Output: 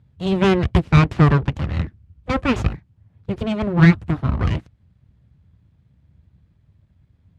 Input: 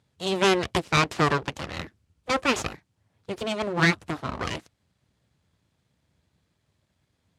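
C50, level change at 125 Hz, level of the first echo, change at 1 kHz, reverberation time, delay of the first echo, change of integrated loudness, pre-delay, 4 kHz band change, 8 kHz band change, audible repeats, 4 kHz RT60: no reverb audible, +15.0 dB, no echo audible, +1.0 dB, no reverb audible, no echo audible, +6.5 dB, no reverb audible, −3.5 dB, can't be measured, no echo audible, no reverb audible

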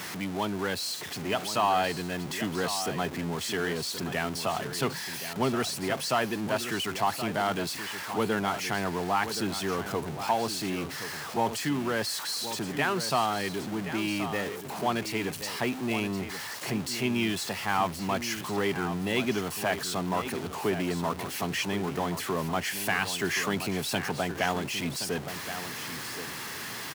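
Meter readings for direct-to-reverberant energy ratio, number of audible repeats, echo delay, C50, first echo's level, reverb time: no reverb audible, 1, 1,074 ms, no reverb audible, −10.5 dB, no reverb audible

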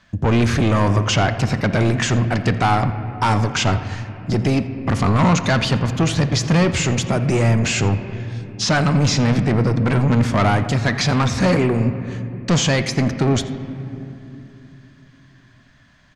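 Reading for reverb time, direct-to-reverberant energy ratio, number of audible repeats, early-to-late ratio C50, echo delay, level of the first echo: 2.8 s, 9.0 dB, 1, 10.0 dB, 85 ms, −19.5 dB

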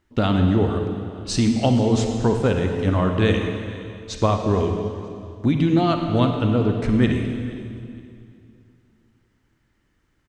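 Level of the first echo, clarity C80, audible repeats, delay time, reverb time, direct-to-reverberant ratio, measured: −19.5 dB, 5.5 dB, 2, 468 ms, 2.4 s, 4.0 dB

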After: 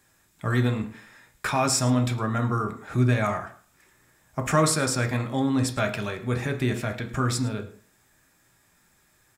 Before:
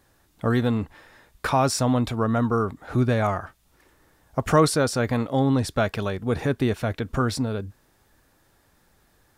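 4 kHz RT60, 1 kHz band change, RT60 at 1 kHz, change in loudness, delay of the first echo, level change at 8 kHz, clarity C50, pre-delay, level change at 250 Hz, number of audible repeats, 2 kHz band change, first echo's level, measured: 0.40 s, −2.5 dB, 0.45 s, −1.5 dB, 108 ms, +4.0 dB, 12.0 dB, 3 ms, −2.5 dB, 1, +1.0 dB, −18.5 dB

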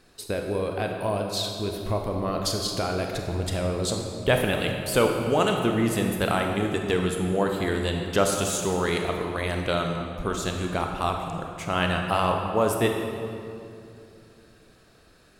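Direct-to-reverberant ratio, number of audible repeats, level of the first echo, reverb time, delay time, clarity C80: 2.5 dB, no echo audible, no echo audible, 2.6 s, no echo audible, 4.5 dB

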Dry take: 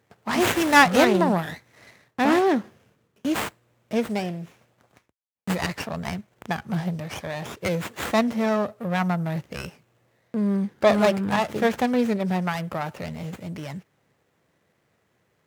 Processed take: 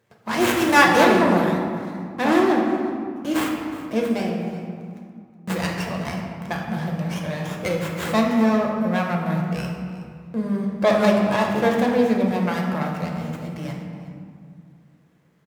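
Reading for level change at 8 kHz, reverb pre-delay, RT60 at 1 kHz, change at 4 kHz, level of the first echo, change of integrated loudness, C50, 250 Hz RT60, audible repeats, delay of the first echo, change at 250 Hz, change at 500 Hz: +0.5 dB, 6 ms, 2.2 s, +1.0 dB, −17.5 dB, +2.0 dB, 2.5 dB, 3.1 s, 1, 368 ms, +3.5 dB, +3.0 dB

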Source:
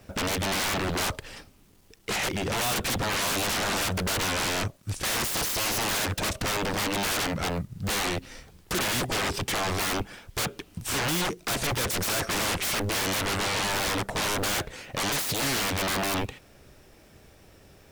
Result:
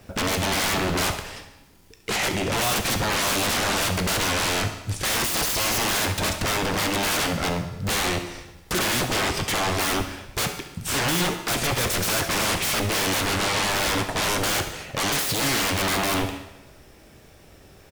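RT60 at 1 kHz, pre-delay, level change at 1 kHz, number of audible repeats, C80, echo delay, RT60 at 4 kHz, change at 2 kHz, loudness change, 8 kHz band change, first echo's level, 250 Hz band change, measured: 1.0 s, 12 ms, +4.0 dB, 1, 10.5 dB, 68 ms, 0.90 s, +4.0 dB, +4.0 dB, +4.0 dB, −14.5 dB, +4.0 dB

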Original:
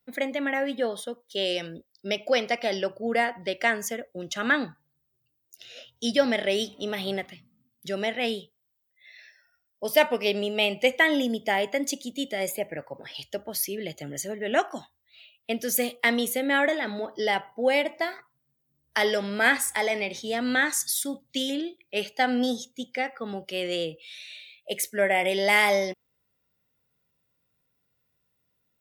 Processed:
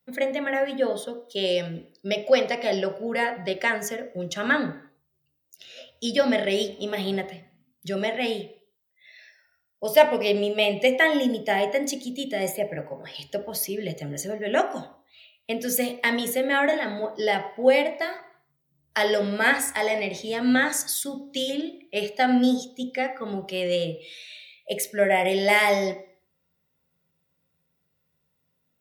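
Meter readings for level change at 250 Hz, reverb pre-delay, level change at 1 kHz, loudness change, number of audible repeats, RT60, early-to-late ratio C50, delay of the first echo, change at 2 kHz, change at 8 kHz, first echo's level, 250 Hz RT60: +3.0 dB, 3 ms, +2.0 dB, +2.0 dB, no echo audible, 0.55 s, 15.0 dB, no echo audible, +0.5 dB, 0.0 dB, no echo audible, 0.50 s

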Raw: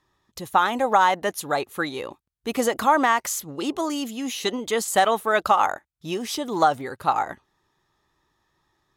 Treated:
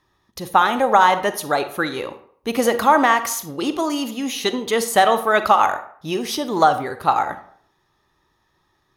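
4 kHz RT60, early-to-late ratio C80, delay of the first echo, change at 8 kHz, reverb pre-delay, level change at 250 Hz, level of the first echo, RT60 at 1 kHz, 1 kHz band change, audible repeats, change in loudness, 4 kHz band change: 0.40 s, 16.5 dB, no echo audible, +2.0 dB, 34 ms, +4.5 dB, no echo audible, 0.60 s, +4.5 dB, no echo audible, +4.0 dB, +4.5 dB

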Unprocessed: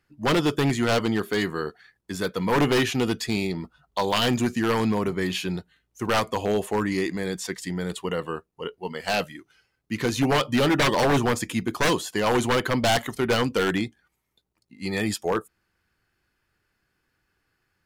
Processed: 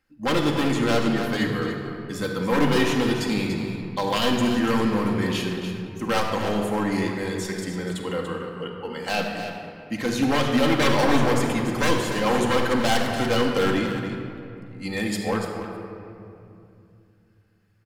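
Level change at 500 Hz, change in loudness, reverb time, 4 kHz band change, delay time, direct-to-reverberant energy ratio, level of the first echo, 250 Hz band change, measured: +0.5 dB, +1.0 dB, 2.6 s, 0.0 dB, 289 ms, −1.0 dB, −9.0 dB, +2.5 dB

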